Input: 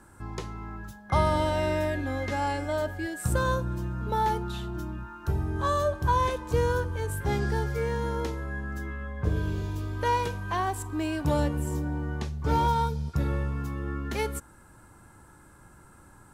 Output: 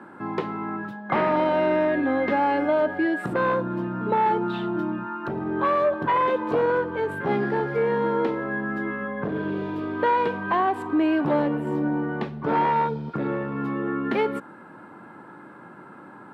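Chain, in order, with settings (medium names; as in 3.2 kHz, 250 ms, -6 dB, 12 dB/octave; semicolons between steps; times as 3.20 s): sine folder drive 7 dB, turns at -12 dBFS; compression, threshold -19 dBFS, peak gain reduction 5.5 dB; high-pass 190 Hz 24 dB/octave; distance through air 460 m; trim +3 dB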